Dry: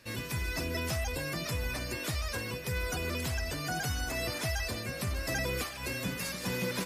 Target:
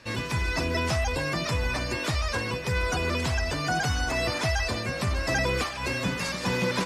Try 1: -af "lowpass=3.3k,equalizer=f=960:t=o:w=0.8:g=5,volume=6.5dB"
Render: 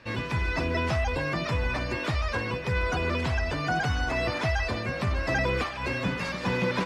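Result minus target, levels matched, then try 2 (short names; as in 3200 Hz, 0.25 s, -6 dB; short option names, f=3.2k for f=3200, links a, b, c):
8000 Hz band -9.5 dB
-af "lowpass=6.8k,equalizer=f=960:t=o:w=0.8:g=5,volume=6.5dB"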